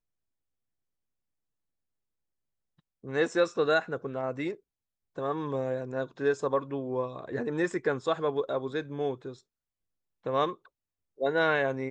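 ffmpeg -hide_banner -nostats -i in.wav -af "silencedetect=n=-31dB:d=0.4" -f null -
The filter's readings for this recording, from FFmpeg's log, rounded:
silence_start: 0.00
silence_end: 3.07 | silence_duration: 3.07
silence_start: 4.52
silence_end: 5.18 | silence_duration: 0.66
silence_start: 9.29
silence_end: 10.26 | silence_duration: 0.98
silence_start: 10.52
silence_end: 11.21 | silence_duration: 0.69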